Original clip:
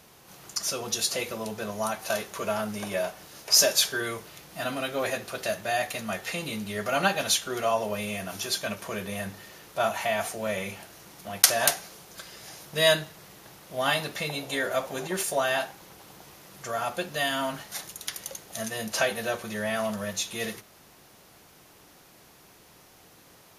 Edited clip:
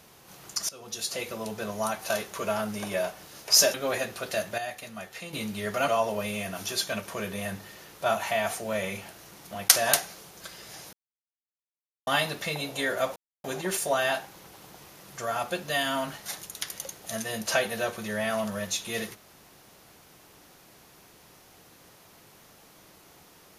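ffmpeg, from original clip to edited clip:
-filter_complex "[0:a]asplit=9[a][b][c][d][e][f][g][h][i];[a]atrim=end=0.69,asetpts=PTS-STARTPTS,afade=t=out:st=0.686:d=0.004:c=hsin:silence=0.11885[j];[b]atrim=start=0.69:end=3.742,asetpts=PTS-STARTPTS,afade=t=in:d=1.09:c=qsin:silence=0.11885[k];[c]atrim=start=4.858:end=5.702[l];[d]atrim=start=5.698:end=6.452,asetpts=PTS-STARTPTS,volume=-8dB[m];[e]atrim=start=6.448:end=7.002[n];[f]atrim=start=7.618:end=12.67,asetpts=PTS-STARTPTS,afade=t=out:st=5.048:d=0.004:c=hsin[o];[g]atrim=start=12.67:end=13.81,asetpts=PTS-STARTPTS,volume=0[p];[h]atrim=start=13.81:end=14.9,asetpts=PTS-STARTPTS,afade=t=in:d=0.004:c=hsin,afade=t=out:st=1.086:d=0.004:c=hsin,apad=pad_dur=0.28[q];[i]atrim=start=14.9,asetpts=PTS-STARTPTS,afade=t=in:d=0.004:c=hsin[r];[j][k]concat=n=2:v=0:a=1[s];[s][l]acrossfade=d=0.004:c1=hsin:c2=hsin[t];[t][m]acrossfade=d=0.004:c1=hsin:c2=hsin[u];[u][n]acrossfade=d=0.004:c1=hsin:c2=hsin[v];[o][p][q][r]concat=n=4:v=0:a=1[w];[v][w]acrossfade=d=0.004:c1=hsin:c2=hsin"

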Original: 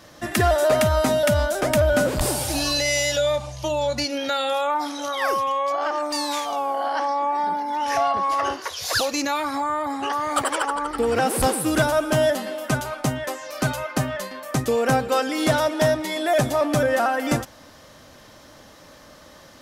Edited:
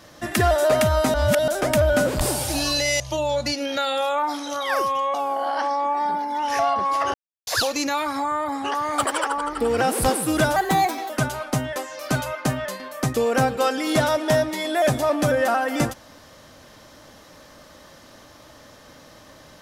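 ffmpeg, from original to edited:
-filter_complex "[0:a]asplit=9[a][b][c][d][e][f][g][h][i];[a]atrim=end=1.142[j];[b]atrim=start=1.138:end=1.482,asetpts=PTS-STARTPTS,areverse[k];[c]atrim=start=1.478:end=3.002[l];[d]atrim=start=3.518:end=5.662[m];[e]atrim=start=6.518:end=8.52,asetpts=PTS-STARTPTS,afade=t=out:st=1.998:d=0.004:c=hsin[n];[f]atrim=start=8.52:end=8.85,asetpts=PTS-STARTPTS,volume=0[o];[g]atrim=start=8.85:end=11.944,asetpts=PTS-STARTPTS,afade=t=in:d=0.004:c=hsin[p];[h]atrim=start=11.94:end=12.61,asetpts=PTS-STARTPTS,asetrate=55125,aresample=44100[q];[i]atrim=start=12.606[r];[j][k]acrossfade=d=0.004:c1=hsin:c2=hsin[s];[s][l]acrossfade=d=0.004:c1=hsin:c2=hsin[t];[t][m]acrossfade=d=0.004:c1=hsin:c2=hsin[u];[n][o][p]concat=n=3:v=0:a=1[v];[u][v]acrossfade=d=0.004:c1=hsin:c2=hsin[w];[w][q]acrossfade=d=0.004:c1=hsin:c2=hsin[x];[x][r]acrossfade=d=0.004:c1=hsin:c2=hsin"

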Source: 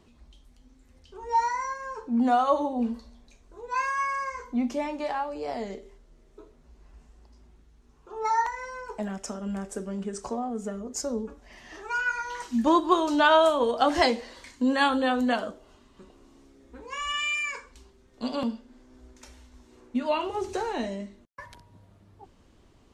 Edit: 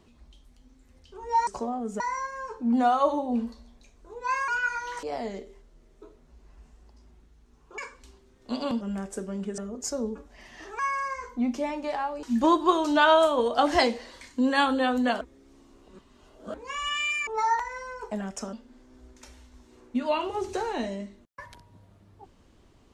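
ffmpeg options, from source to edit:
-filter_complex "[0:a]asplit=14[a][b][c][d][e][f][g][h][i][j][k][l][m][n];[a]atrim=end=1.472[o];[b]atrim=start=10.168:end=10.702[p];[c]atrim=start=1.468:end=3.952[q];[d]atrim=start=11.908:end=12.462[r];[e]atrim=start=5.388:end=8.142[s];[f]atrim=start=17.498:end=18.532[t];[g]atrim=start=9.398:end=10.172[u];[h]atrim=start=10.698:end=11.912[v];[i]atrim=start=3.948:end=5.392[w];[j]atrim=start=12.458:end=15.442[x];[k]atrim=start=15.438:end=16.772,asetpts=PTS-STARTPTS,areverse[y];[l]atrim=start=16.768:end=17.502[z];[m]atrim=start=8.138:end=9.402[aa];[n]atrim=start=18.528[ab];[o][p]acrossfade=d=0.004:c1=hsin:c2=hsin[ac];[ac][q]acrossfade=d=0.004:c1=hsin:c2=hsin[ad];[ad][r]acrossfade=d=0.004:c1=hsin:c2=hsin[ae];[ae][s]acrossfade=d=0.004:c1=hsin:c2=hsin[af];[af][t]acrossfade=d=0.004:c1=hsin:c2=hsin[ag];[ag][u]acrossfade=d=0.004:c1=hsin:c2=hsin[ah];[ah][v]acrossfade=d=0.004:c1=hsin:c2=hsin[ai];[ai][w]acrossfade=d=0.004:c1=hsin:c2=hsin[aj];[aj][x]acrossfade=d=0.004:c1=hsin:c2=hsin[ak];[ak][y]acrossfade=d=0.004:c1=hsin:c2=hsin[al];[al][z]acrossfade=d=0.004:c1=hsin:c2=hsin[am];[am][aa]acrossfade=d=0.004:c1=hsin:c2=hsin[an];[an][ab]acrossfade=d=0.004:c1=hsin:c2=hsin"

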